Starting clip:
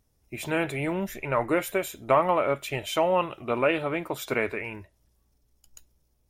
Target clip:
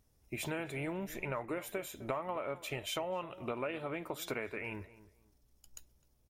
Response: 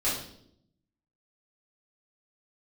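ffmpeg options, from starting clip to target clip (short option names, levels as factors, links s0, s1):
-filter_complex "[0:a]acompressor=threshold=0.02:ratio=6,asplit=2[s0][s1];[s1]adelay=257,lowpass=f=1400:p=1,volume=0.158,asplit=2[s2][s3];[s3]adelay=257,lowpass=f=1400:p=1,volume=0.25[s4];[s2][s4]amix=inputs=2:normalize=0[s5];[s0][s5]amix=inputs=2:normalize=0,volume=0.841"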